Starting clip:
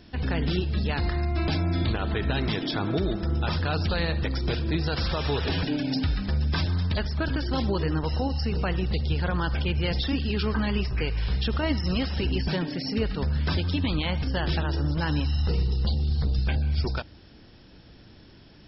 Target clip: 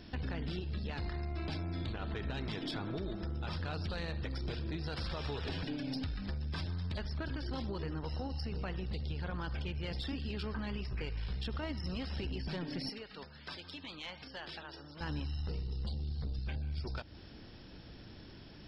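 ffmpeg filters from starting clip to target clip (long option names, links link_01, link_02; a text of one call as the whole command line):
ffmpeg -i in.wav -filter_complex "[0:a]acompressor=threshold=-34dB:ratio=8,asettb=1/sr,asplit=3[link_01][link_02][link_03];[link_01]atrim=end=12.894[link_04];[link_02]atrim=start=12.89:end=15.01,asetpts=PTS-STARTPTS,afade=type=in:duration=0.004:curve=qsin,afade=type=out:start_time=2.116:duration=0.004:curve=qsin,highpass=frequency=810:poles=1[link_05];[link_03]atrim=start=15.006[link_06];[link_04][link_05]acrossfade=duration=0.004:curve1=hsin:curve2=qsin[link_07];[link_07][link_06]acrossfade=duration=0.004:curve1=qsin:curve2=hsin,aeval=exprs='(tanh(25.1*val(0)+0.35)-tanh(0.35))/25.1':channel_layout=same" out.wav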